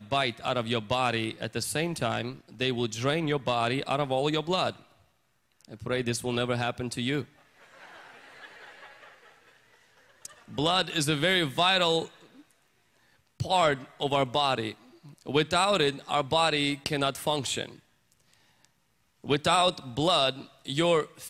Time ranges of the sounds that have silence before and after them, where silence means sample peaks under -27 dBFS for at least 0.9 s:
5.86–7.22
10.25–12.02
13.4–17.66

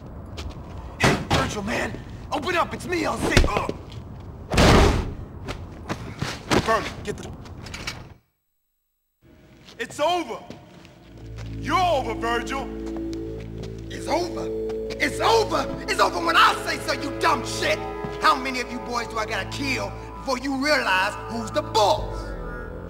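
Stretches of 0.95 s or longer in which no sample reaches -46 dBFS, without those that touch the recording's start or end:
8.17–9.25

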